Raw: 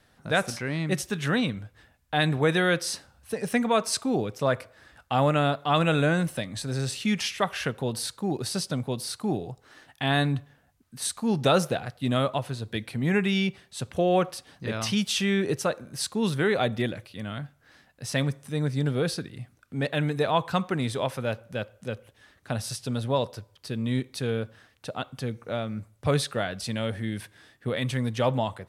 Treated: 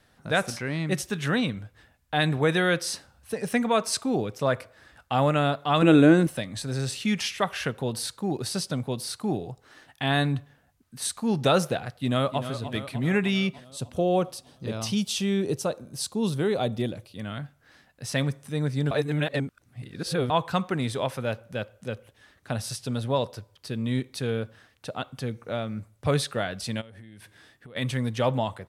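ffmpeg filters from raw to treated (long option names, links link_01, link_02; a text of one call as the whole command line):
ffmpeg -i in.wav -filter_complex "[0:a]asettb=1/sr,asplit=3[link_01][link_02][link_03];[link_01]atrim=end=5.824[link_04];[link_02]atrim=start=5.82:end=6.27,asetpts=PTS-STARTPTS,afade=type=in:duration=0.004:curve=qsin,afade=type=out:start_time=0.446:duration=0.004:curve=qsin,equalizer=frequency=320:width=2:gain=15[link_05];[link_03]atrim=start=6.266[link_06];[link_04][link_05]acrossfade=duration=0.004:curve1=hsin:curve2=qsin[link_07];[link_07][link_06]acrossfade=duration=0.004:curve1=qsin:curve2=hsin,asplit=2[link_08][link_09];[link_09]afade=type=in:start_time=11.92:duration=0.01,afade=type=out:start_time=12.5:duration=0.01,aecho=0:1:300|600|900|1200|1500|1800|2100|2400:0.298538|0.19405|0.126132|0.0819861|0.0532909|0.0346391|0.0225154|0.014635[link_10];[link_08][link_10]amix=inputs=2:normalize=0,asettb=1/sr,asplit=3[link_11][link_12][link_13];[link_11]atrim=end=13.644[link_14];[link_12]atrim=start=13.64:end=17.19,asetpts=PTS-STARTPTS,afade=type=in:duration=0.004:curve=qsin,afade=type=out:start_time=3.546:duration=0.004:curve=qsin,equalizer=frequency=1800:width_type=o:width=1.2:gain=-10.5[link_15];[link_13]atrim=start=17.186[link_16];[link_14][link_15]acrossfade=duration=0.004:curve1=hsin:curve2=qsin[link_17];[link_17][link_16]acrossfade=duration=0.004:curve1=qsin:curve2=hsin,asplit=3[link_18][link_19][link_20];[link_18]afade=type=out:start_time=26.8:duration=0.02[link_21];[link_19]acompressor=threshold=-42dB:ratio=20:attack=3.2:release=140:knee=1:detection=peak,afade=type=in:start_time=26.8:duration=0.02,afade=type=out:start_time=27.75:duration=0.02[link_22];[link_20]afade=type=in:start_time=27.75:duration=0.02[link_23];[link_21][link_22][link_23]amix=inputs=3:normalize=0,asplit=3[link_24][link_25][link_26];[link_24]atrim=end=18.912[link_27];[link_25]atrim=start=18.908:end=20.302,asetpts=PTS-STARTPTS,areverse[link_28];[link_26]atrim=start=20.298[link_29];[link_27][link_28]acrossfade=duration=0.004:curve1=hsin:curve2=hsin[link_30];[link_30][link_29]acrossfade=duration=0.004:curve1=hsin:curve2=hsin" out.wav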